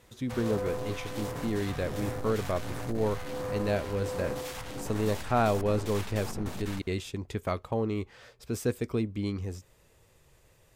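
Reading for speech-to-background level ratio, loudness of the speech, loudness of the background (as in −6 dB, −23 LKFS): 5.5 dB, −32.5 LKFS, −38.0 LKFS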